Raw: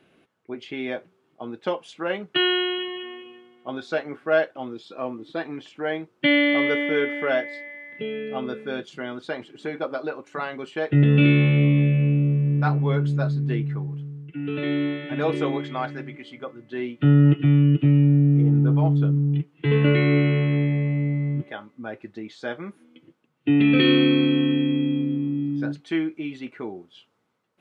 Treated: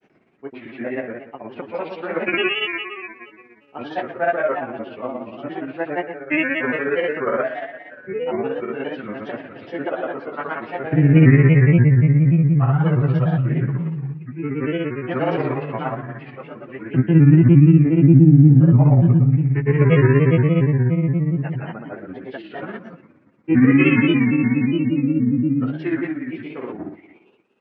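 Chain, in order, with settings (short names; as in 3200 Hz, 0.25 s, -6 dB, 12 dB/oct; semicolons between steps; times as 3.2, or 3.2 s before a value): nonlinear frequency compression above 1500 Hz 1.5:1; spring tank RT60 1.1 s, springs 39/49 ms, chirp 30 ms, DRR -1 dB; grains, grains 17/s, pitch spread up and down by 3 st; gain +1.5 dB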